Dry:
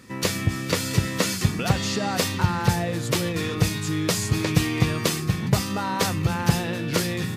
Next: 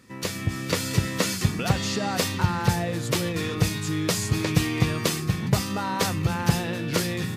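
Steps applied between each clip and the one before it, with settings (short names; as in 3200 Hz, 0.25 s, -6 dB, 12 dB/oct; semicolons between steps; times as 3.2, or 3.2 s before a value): AGC gain up to 7.5 dB; gain -6 dB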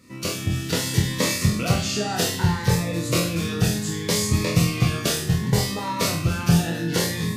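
spectral trails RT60 0.39 s; on a send: flutter echo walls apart 4.1 m, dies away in 0.4 s; on the sum: cascading phaser rising 0.66 Hz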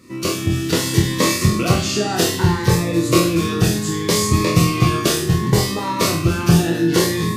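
small resonant body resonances 350/1100 Hz, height 12 dB, ringing for 65 ms; gain +4 dB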